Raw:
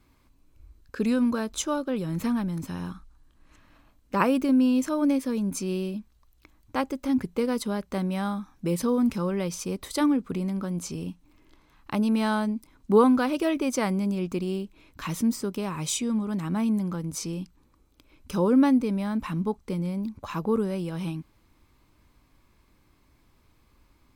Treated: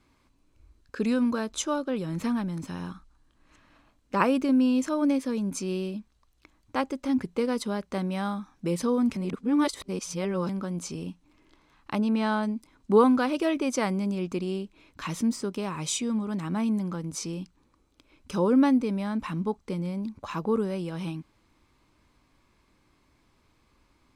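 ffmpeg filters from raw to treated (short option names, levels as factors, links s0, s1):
-filter_complex "[0:a]asettb=1/sr,asplit=3[s0][s1][s2];[s0]atrim=end=11.984[s3];[s1]atrim=start=11.98:end=12.43,asetpts=PTS-STARTPTS,afade=t=in:d=0.004:c=qsin,afade=t=out:st=0.446:d=0.004:c=qsin,lowpass=f=3900:p=1[s4];[s2]atrim=start=12.426[s5];[s3][s4]acrossfade=d=0.004:c1=hsin:c2=qsin[s6];[s6][s5]acrossfade=d=0.004:c1=qsin:c2=hsin,asplit=3[s7][s8][s9];[s7]atrim=end=9.162[s10];[s8]atrim=start=9.158:end=10.492,asetpts=PTS-STARTPTS,areverse[s11];[s9]atrim=start=10.488[s12];[s10][s11]acrossfade=d=0.004:c1=hsin:c2=hsin[s13];[s13][s12]acrossfade=d=0.004:c1=hsin:c2=hsin,lowpass=9200,lowshelf=f=120:g=-7"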